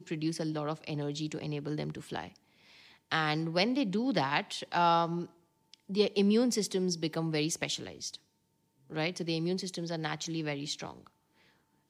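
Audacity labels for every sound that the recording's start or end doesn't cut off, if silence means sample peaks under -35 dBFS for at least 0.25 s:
3.120000	5.240000	sound
5.740000	8.150000	sound
8.920000	10.910000	sound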